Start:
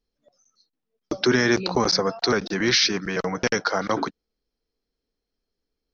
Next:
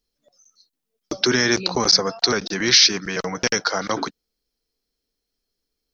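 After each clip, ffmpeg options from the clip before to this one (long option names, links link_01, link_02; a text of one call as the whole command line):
ffmpeg -i in.wav -af "highshelf=frequency=3400:gain=12,volume=-1dB" out.wav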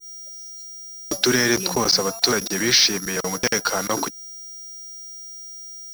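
ffmpeg -i in.wav -af "aeval=exprs='val(0)+0.0562*sin(2*PI*5700*n/s)':channel_layout=same,acrusher=bits=3:mix=0:aa=0.5,adynamicequalizer=threshold=0.0282:dfrequency=1900:dqfactor=0.7:tfrequency=1900:tqfactor=0.7:attack=5:release=100:ratio=0.375:range=2:mode=cutabove:tftype=highshelf" out.wav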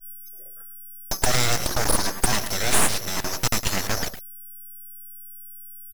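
ffmpeg -i in.wav -af "aecho=1:1:108:0.299,aeval=exprs='abs(val(0))':channel_layout=same" out.wav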